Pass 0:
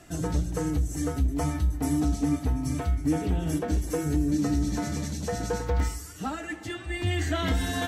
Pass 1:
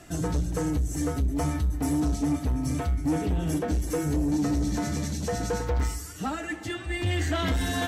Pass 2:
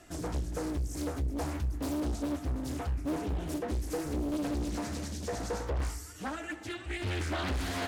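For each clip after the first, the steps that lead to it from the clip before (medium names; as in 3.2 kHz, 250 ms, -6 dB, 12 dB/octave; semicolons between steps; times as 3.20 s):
saturation -22 dBFS, distortion -15 dB; trim +2.5 dB
peaking EQ 150 Hz -9 dB 0.62 oct; loudspeaker Doppler distortion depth 0.93 ms; trim -5.5 dB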